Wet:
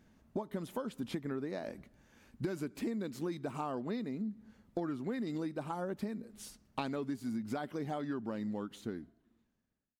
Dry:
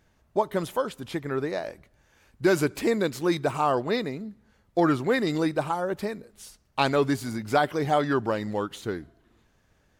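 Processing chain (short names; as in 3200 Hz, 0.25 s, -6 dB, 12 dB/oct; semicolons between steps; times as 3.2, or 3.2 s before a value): ending faded out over 2.83 s; bell 230 Hz +13 dB 0.85 oct; compressor 12:1, threshold -30 dBFS, peak gain reduction 18 dB; gain -4 dB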